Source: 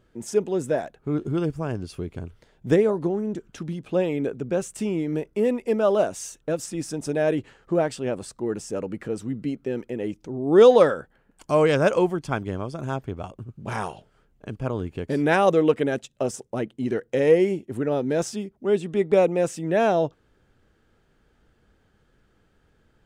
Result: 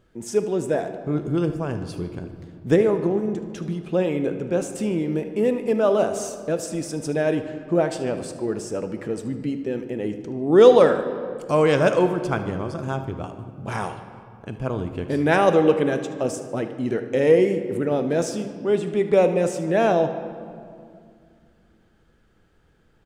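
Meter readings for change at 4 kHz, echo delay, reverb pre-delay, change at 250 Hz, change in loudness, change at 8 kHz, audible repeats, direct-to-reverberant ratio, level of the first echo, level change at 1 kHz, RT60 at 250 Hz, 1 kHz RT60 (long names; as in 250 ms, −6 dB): +1.5 dB, 75 ms, 6 ms, +2.0 dB, +1.5 dB, +1.5 dB, 1, 7.5 dB, −16.0 dB, +1.5 dB, 3.4 s, 2.2 s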